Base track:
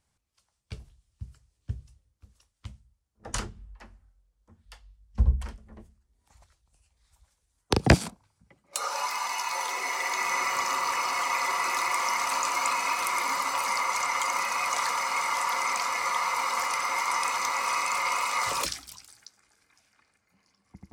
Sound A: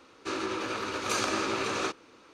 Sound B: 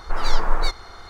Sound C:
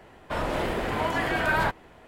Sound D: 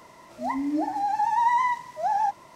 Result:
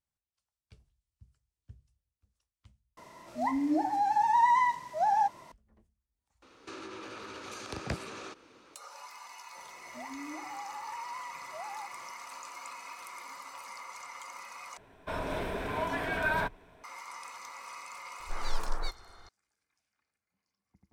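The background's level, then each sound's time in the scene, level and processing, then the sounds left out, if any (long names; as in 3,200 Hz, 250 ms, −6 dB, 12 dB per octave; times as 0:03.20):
base track −17.5 dB
0:02.97: overwrite with D −2 dB
0:06.42: mix in A −2.5 dB + downward compressor, threshold −38 dBFS
0:09.56: mix in D −10.5 dB + downward compressor, threshold −30 dBFS
0:14.77: overwrite with C −7.5 dB + EQ curve with evenly spaced ripples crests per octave 1.6, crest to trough 7 dB
0:18.20: mix in B −13 dB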